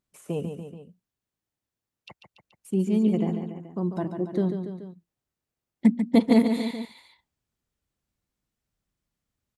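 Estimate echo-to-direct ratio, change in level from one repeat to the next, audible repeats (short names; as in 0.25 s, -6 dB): -6.0 dB, -4.5 dB, 3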